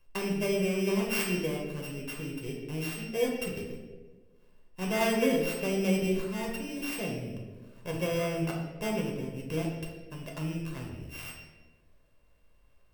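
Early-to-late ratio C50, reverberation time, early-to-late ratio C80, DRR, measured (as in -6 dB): 3.5 dB, 1.4 s, 5.5 dB, -1.5 dB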